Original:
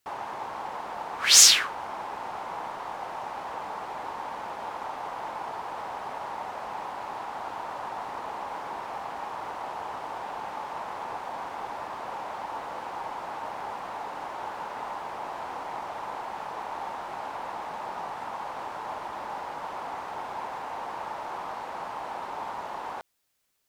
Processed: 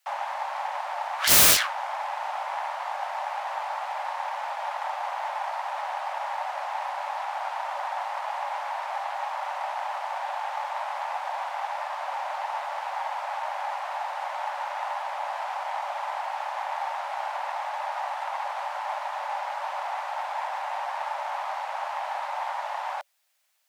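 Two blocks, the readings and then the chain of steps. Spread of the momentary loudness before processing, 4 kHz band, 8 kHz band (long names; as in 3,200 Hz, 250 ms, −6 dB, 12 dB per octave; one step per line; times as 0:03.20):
1 LU, −4.0 dB, −4.0 dB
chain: phase distortion by the signal itself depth 0.95 ms
Chebyshev high-pass with heavy ripple 560 Hz, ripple 3 dB
wrap-around overflow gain 16 dB
level +6 dB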